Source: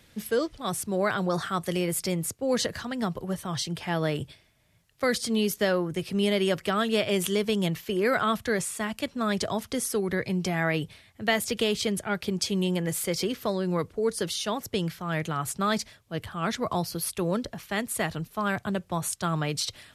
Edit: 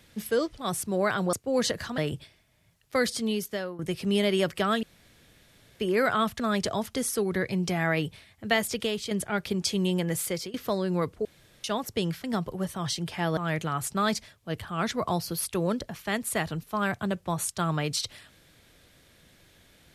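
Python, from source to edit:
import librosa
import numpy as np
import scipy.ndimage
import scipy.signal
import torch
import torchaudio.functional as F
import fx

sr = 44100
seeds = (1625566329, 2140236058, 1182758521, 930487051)

y = fx.edit(x, sr, fx.cut(start_s=1.33, length_s=0.95),
    fx.move(start_s=2.93, length_s=1.13, to_s=15.01),
    fx.fade_out_to(start_s=5.1, length_s=0.77, floor_db=-14.5),
    fx.room_tone_fill(start_s=6.91, length_s=0.97),
    fx.cut(start_s=8.48, length_s=0.69),
    fx.fade_out_to(start_s=11.33, length_s=0.55, floor_db=-7.5),
    fx.fade_out_to(start_s=12.92, length_s=0.39, curve='qsin', floor_db=-22.5),
    fx.room_tone_fill(start_s=14.02, length_s=0.39), tone=tone)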